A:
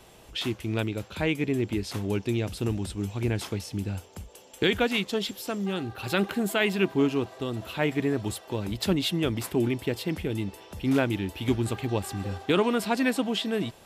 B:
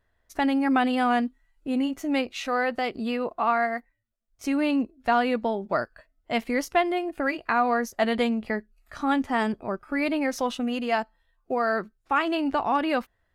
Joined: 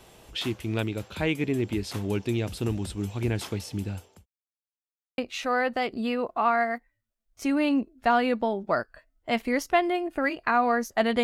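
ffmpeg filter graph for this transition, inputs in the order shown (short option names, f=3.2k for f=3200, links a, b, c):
-filter_complex "[0:a]apad=whole_dur=11.23,atrim=end=11.23,asplit=2[a][b];[a]atrim=end=4.26,asetpts=PTS-STARTPTS,afade=t=out:st=3.72:d=0.54:c=qsin[c];[b]atrim=start=4.26:end=5.18,asetpts=PTS-STARTPTS,volume=0[d];[1:a]atrim=start=2.2:end=8.25,asetpts=PTS-STARTPTS,afade=t=in:d=0.004:c=hsin[e];[c][d][e]concat=n=3:v=0:a=1"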